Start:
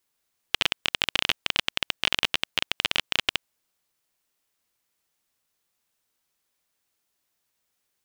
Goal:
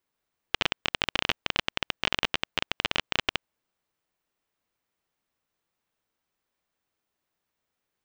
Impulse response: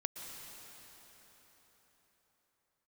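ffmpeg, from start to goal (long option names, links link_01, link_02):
-af "equalizer=frequency=14000:width_type=o:width=2.4:gain=-13.5,aeval=exprs='0.422*(cos(1*acos(clip(val(0)/0.422,-1,1)))-cos(1*PI/2))+0.0237*(cos(3*acos(clip(val(0)/0.422,-1,1)))-cos(3*PI/2))':channel_layout=same,volume=2.5dB"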